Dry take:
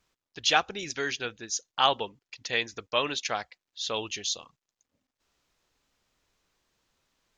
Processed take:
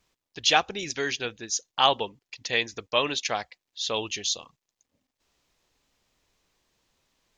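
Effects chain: bell 1400 Hz -4.5 dB 0.44 oct; gain +3 dB

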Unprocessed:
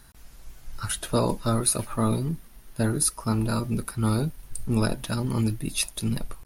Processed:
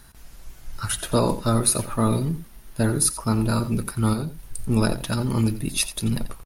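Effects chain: 4.13–4.59 compressor 3:1, threshold -29 dBFS, peak gain reduction 7 dB; outdoor echo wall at 15 m, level -13 dB; gain +3 dB

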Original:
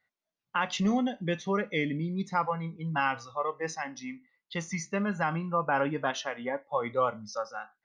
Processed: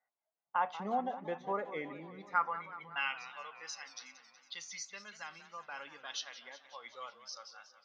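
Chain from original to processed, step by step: band-pass sweep 790 Hz -> 4500 Hz, 1.69–3.66; warbling echo 0.185 s, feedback 67%, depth 182 cents, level -14 dB; gain +2 dB

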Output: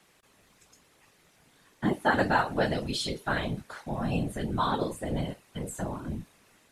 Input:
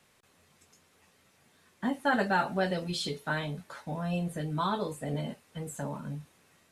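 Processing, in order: whisperiser; gain +2.5 dB

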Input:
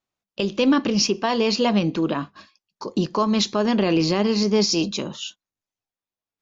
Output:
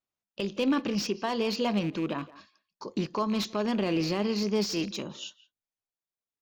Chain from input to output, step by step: rattling part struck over -28 dBFS, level -26 dBFS; speakerphone echo 0.17 s, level -18 dB; slew limiter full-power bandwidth 330 Hz; gain -8 dB

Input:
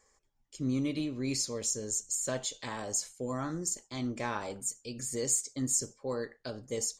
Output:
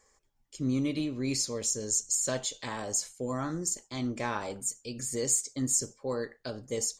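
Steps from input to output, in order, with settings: 1.8–2.41 bell 5000 Hz +5.5 dB 0.96 oct; gain +2 dB

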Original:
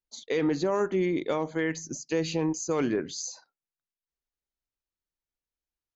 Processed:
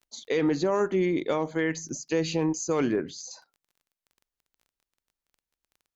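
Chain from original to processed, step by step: 2.91–3.31 high shelf 4200 Hz -10.5 dB; crackle 18/s -49 dBFS; gain +1.5 dB

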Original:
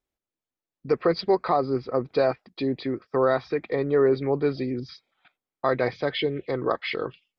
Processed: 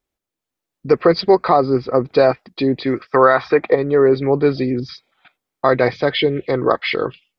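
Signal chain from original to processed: 2.86–3.74 bell 3700 Hz -> 720 Hz +12.5 dB 2.6 oct; AGC gain up to 3.5 dB; maximiser +6.5 dB; gain -1 dB

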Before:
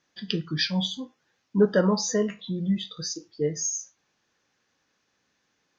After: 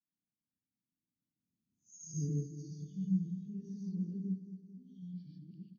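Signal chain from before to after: whole clip reversed; Doppler pass-by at 2.01, 16 m/s, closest 3.2 m; inverse Chebyshev low-pass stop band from 550 Hz, stop band 50 dB; tilt +4.5 dB/oct; on a send: feedback echo 0.219 s, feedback 57%, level -12 dB; on the sum: non-linear reverb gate 0.17 s rising, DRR -3.5 dB; gain +13 dB

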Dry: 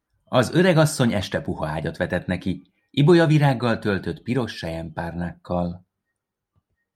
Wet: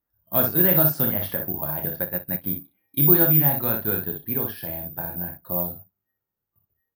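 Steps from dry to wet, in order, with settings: high shelf 4000 Hz -10 dB; early reflections 28 ms -6 dB, 60 ms -5.5 dB; careless resampling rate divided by 3×, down filtered, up zero stuff; 2.04–2.44 upward expander 2.5:1, over -25 dBFS; gain -8 dB

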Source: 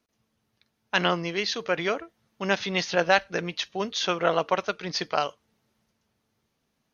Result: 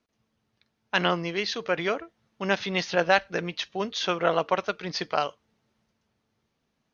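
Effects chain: air absorption 59 m

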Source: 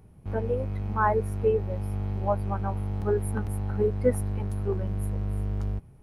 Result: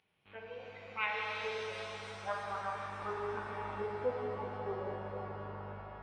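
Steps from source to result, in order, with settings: tracing distortion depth 0.17 ms; band-pass sweep 2900 Hz -> 800 Hz, 0.38–4.17; spectral gate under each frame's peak -25 dB strong; in parallel at +1 dB: compressor, threshold -43 dBFS, peak gain reduction 15.5 dB; on the sum: shimmer reverb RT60 3.9 s, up +7 st, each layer -8 dB, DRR -2.5 dB; gain -5 dB

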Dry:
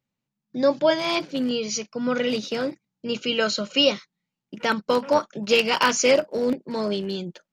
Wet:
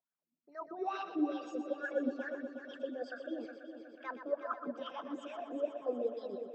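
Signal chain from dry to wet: formant sharpening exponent 1.5; reverse; compressor 6:1, threshold -28 dBFS, peak gain reduction 13 dB; reverse; limiter -23 dBFS, peak gain reduction 5 dB; wah 2 Hz 240–1400 Hz, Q 6.6; wide varispeed 1.15×; on a send: multi-head echo 0.122 s, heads first and third, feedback 61%, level -10 dB; on the sum: gain +4.5 dB

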